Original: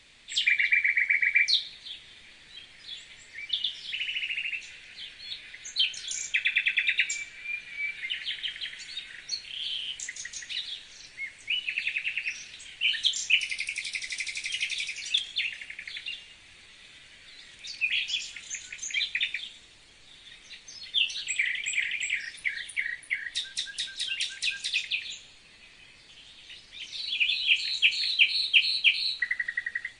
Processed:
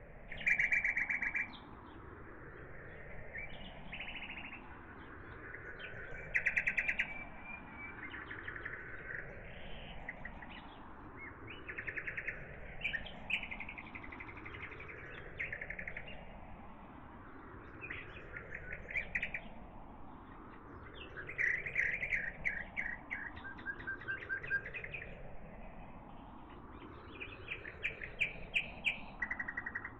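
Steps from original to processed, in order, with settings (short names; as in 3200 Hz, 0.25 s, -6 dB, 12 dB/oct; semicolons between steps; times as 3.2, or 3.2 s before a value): moving spectral ripple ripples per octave 0.52, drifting +0.32 Hz, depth 11 dB; inverse Chebyshev low-pass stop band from 4200 Hz, stop band 60 dB; in parallel at -8.5 dB: soft clip -38.5 dBFS, distortion -13 dB; on the sum: gain +7.5 dB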